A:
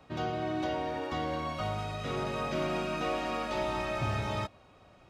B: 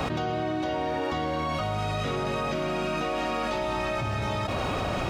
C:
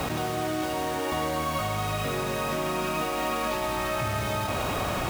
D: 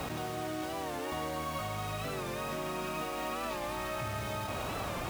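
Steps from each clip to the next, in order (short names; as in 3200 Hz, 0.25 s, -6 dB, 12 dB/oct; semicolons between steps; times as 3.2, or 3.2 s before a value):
fast leveller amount 100%
requantised 6-bit, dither none; on a send: band-limited delay 98 ms, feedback 71%, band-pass 1500 Hz, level -5 dB; on the sum: gain -1 dB
record warp 45 rpm, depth 100 cents; gain -8 dB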